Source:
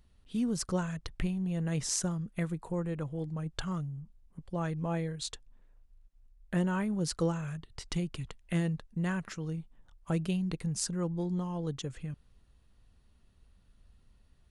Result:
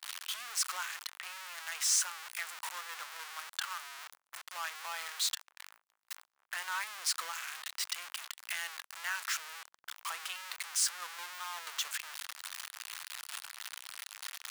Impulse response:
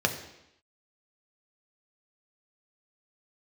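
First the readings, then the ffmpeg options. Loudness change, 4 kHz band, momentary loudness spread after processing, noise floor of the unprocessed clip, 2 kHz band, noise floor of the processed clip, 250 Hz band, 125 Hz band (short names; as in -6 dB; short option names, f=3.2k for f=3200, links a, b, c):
-2.5 dB, +7.5 dB, 13 LU, -65 dBFS, +6.5 dB, -84 dBFS, under -40 dB, under -40 dB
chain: -af "aeval=exprs='val(0)+0.5*0.0376*sgn(val(0))':c=same,highpass=f=1.1k:w=0.5412,highpass=f=1.1k:w=1.3066,agate=range=-33dB:threshold=-50dB:ratio=16:detection=peak"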